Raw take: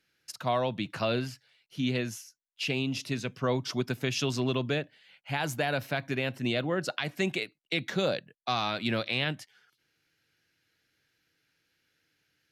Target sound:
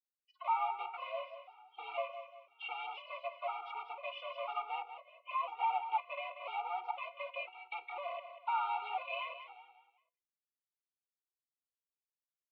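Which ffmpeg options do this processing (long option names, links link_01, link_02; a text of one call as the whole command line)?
ffmpeg -i in.wav -filter_complex "[0:a]afftfilt=real='re*gte(hypot(re,im),0.00398)':imag='im*gte(hypot(re,im),0.00398)':win_size=1024:overlap=0.75,aecho=1:1:5.8:0.83,acrossover=split=1400[link_01][link_02];[link_01]acontrast=77[link_03];[link_03][link_02]amix=inputs=2:normalize=0,alimiter=limit=-15.5dB:level=0:latency=1:release=242,asplit=2[link_04][link_05];[link_05]aeval=exprs='(mod(15*val(0)+1,2)-1)/15':channel_layout=same,volume=-4dB[link_06];[link_04][link_06]amix=inputs=2:normalize=0,flanger=delay=9.7:depth=6.9:regen=82:speed=0.21:shape=sinusoidal,highpass=frequency=530:width_type=q:width=0.5412,highpass=frequency=530:width_type=q:width=1.307,lowpass=frequency=2400:width_type=q:width=0.5176,lowpass=frequency=2400:width_type=q:width=0.7071,lowpass=frequency=2400:width_type=q:width=1.932,afreqshift=190,asuperstop=centerf=1700:order=8:qfactor=2.1,aecho=1:1:188|376|564|752:0.316|0.117|0.0433|0.016,afftfilt=real='re*gt(sin(2*PI*1*pts/sr)*(1-2*mod(floor(b*sr/1024/240),2)),0)':imag='im*gt(sin(2*PI*1*pts/sr)*(1-2*mod(floor(b*sr/1024/240),2)),0)':win_size=1024:overlap=0.75" out.wav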